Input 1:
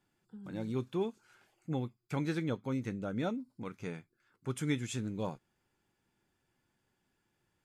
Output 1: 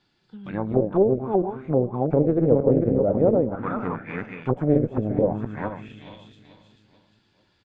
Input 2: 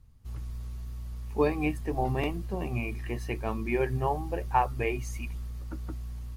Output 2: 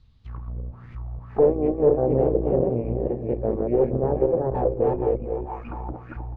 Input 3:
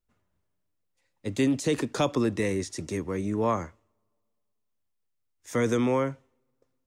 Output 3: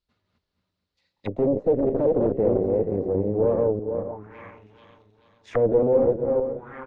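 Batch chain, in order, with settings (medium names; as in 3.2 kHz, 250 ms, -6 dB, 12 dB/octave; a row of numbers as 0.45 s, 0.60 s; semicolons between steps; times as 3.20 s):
backward echo that repeats 237 ms, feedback 44%, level -2 dB; Chebyshev shaper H 3 -14 dB, 4 -16 dB, 5 -12 dB, 8 -15 dB, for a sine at -10 dBFS; feedback delay 436 ms, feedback 46%, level -17 dB; touch-sensitive low-pass 510–4300 Hz down, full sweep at -24 dBFS; normalise loudness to -23 LUFS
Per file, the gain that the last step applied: +3.5 dB, -3.0 dB, -5.5 dB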